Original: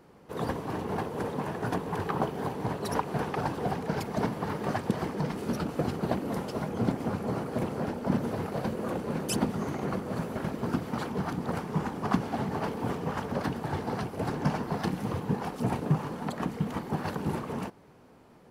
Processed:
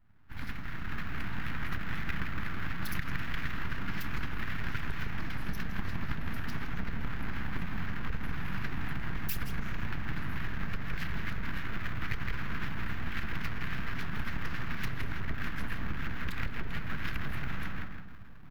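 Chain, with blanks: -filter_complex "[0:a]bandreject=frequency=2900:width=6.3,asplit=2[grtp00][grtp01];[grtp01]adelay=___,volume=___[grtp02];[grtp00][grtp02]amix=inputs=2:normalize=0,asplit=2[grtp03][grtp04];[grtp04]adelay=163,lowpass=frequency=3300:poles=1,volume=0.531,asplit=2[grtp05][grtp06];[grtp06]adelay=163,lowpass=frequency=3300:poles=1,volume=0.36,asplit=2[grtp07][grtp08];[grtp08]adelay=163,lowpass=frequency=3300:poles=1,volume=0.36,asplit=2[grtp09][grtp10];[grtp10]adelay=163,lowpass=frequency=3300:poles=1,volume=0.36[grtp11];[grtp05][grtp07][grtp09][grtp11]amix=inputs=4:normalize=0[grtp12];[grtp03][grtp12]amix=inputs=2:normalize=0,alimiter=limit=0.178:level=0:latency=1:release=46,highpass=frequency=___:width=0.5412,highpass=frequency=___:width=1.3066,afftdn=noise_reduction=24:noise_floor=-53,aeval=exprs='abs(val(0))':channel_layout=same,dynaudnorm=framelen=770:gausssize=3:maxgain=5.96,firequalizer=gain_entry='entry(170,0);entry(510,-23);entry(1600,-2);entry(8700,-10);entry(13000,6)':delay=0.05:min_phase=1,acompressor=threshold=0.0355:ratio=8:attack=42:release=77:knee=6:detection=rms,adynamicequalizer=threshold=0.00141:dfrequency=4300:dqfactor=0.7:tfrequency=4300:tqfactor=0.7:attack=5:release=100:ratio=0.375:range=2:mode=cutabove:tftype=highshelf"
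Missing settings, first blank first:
29, 0.224, 190, 190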